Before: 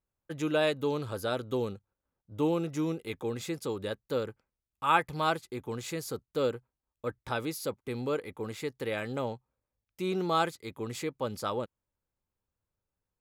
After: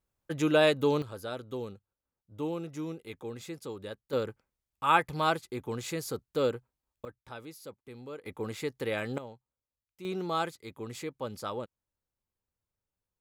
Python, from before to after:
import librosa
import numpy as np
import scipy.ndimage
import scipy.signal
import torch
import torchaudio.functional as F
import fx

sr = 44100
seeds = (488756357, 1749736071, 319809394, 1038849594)

y = fx.gain(x, sr, db=fx.steps((0.0, 4.0), (1.02, -6.0), (4.13, 1.0), (7.05, -11.5), (8.26, 1.0), (9.18, -11.0), (10.05, -3.5)))